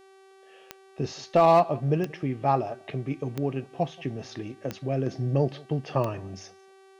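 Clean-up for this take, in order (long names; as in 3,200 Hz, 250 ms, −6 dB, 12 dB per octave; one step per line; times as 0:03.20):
clipped peaks rebuilt −11.5 dBFS
click removal
hum removal 385.2 Hz, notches 30
echo removal 178 ms −23.5 dB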